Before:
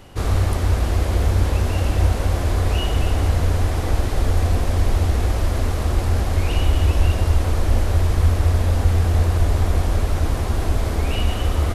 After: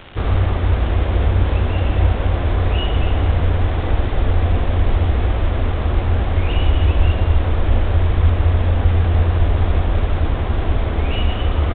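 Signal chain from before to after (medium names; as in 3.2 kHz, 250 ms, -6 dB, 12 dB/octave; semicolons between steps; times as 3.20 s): crackle 350 per s -25 dBFS; resampled via 8 kHz; trim +2 dB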